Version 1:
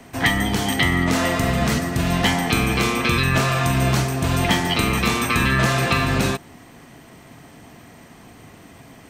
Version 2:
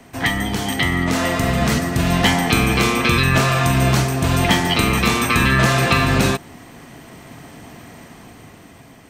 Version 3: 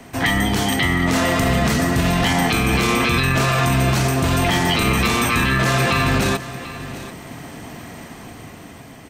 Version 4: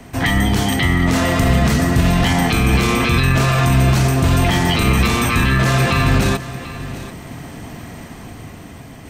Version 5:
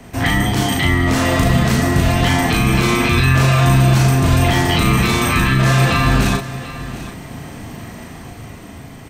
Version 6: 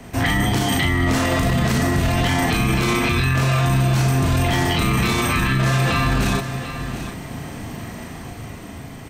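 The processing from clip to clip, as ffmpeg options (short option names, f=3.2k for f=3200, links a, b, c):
-af "dynaudnorm=f=570:g=5:m=11.5dB,volume=-1dB"
-af "alimiter=limit=-13.5dB:level=0:latency=1:release=20,aecho=1:1:741:0.178,volume=4dB"
-af "areverse,acompressor=mode=upward:threshold=-36dB:ratio=2.5,areverse,lowshelf=f=140:g=9"
-filter_complex "[0:a]asplit=2[a][b];[b]adelay=37,volume=-2.5dB[c];[a][c]amix=inputs=2:normalize=0,volume=-1dB"
-af "alimiter=limit=-10.5dB:level=0:latency=1:release=30"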